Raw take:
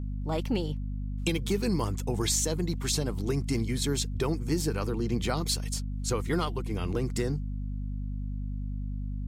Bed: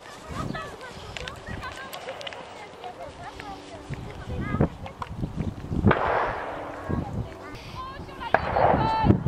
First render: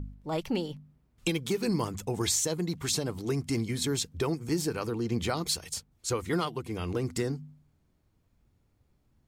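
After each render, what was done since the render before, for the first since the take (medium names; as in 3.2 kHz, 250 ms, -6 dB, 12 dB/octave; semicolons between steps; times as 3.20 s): de-hum 50 Hz, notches 5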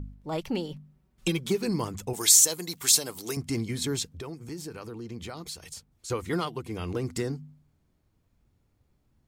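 0.71–1.58 s: comb 5.3 ms, depth 57%; 2.13–3.37 s: RIAA curve recording; 4.11–6.10 s: compression 2:1, threshold -42 dBFS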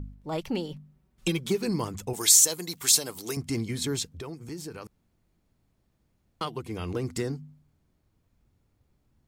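4.87–6.41 s: room tone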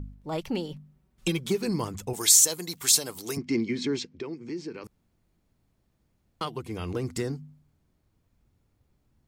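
3.38–4.84 s: cabinet simulation 180–5500 Hz, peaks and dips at 240 Hz +7 dB, 360 Hz +7 dB, 720 Hz -6 dB, 1.3 kHz -4 dB, 2.2 kHz +6 dB, 3.6 kHz -4 dB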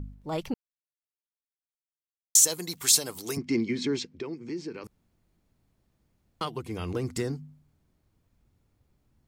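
0.54–2.35 s: mute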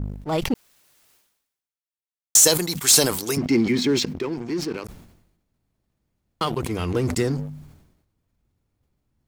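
waveshaping leveller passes 2; decay stretcher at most 65 dB/s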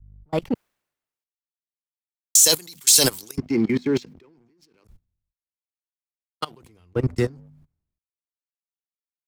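level held to a coarse grid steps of 22 dB; three bands expanded up and down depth 100%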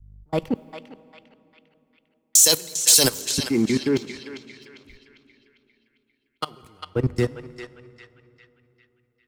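on a send: band-passed feedback delay 400 ms, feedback 50%, band-pass 2.4 kHz, level -6 dB; on the sum: plate-style reverb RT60 3.6 s, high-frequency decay 0.55×, DRR 18 dB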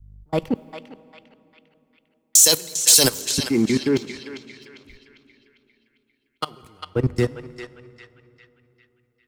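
trim +1.5 dB; peak limiter -2 dBFS, peak gain reduction 1 dB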